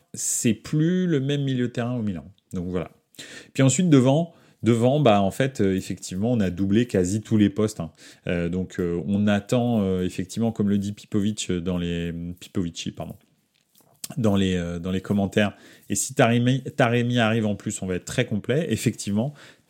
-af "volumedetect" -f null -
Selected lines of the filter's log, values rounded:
mean_volume: -23.5 dB
max_volume: -3.3 dB